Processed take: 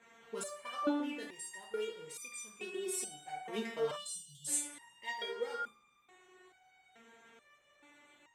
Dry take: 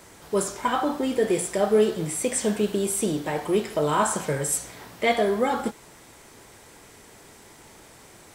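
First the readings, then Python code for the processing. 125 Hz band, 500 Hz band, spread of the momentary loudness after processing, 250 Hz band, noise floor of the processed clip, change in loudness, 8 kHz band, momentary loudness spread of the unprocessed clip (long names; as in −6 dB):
−26.5 dB, −17.0 dB, 10 LU, −15.5 dB, −70 dBFS, −15.0 dB, −11.0 dB, 6 LU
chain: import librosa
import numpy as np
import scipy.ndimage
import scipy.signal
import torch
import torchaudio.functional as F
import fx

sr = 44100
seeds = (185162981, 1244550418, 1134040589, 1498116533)

y = fx.wiener(x, sr, points=9)
y = fx.highpass(y, sr, hz=150.0, slope=6)
y = fx.notch(y, sr, hz=620.0, q=18.0)
y = fx.rev_double_slope(y, sr, seeds[0], early_s=0.54, late_s=1.9, knee_db=-17, drr_db=5.5)
y = fx.spec_erase(y, sr, start_s=3.97, length_s=0.5, low_hz=210.0, high_hz=2700.0)
y = fx.peak_eq(y, sr, hz=3300.0, db=11.0, octaves=2.6)
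y = fx.resonator_held(y, sr, hz=2.3, low_hz=230.0, high_hz=1200.0)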